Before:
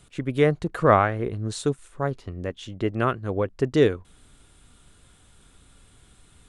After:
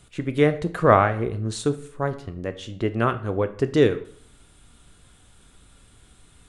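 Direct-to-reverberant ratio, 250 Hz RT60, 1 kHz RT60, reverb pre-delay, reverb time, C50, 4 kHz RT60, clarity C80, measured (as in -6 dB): 10.0 dB, 0.60 s, 0.55 s, 11 ms, 0.60 s, 15.0 dB, 0.45 s, 18.5 dB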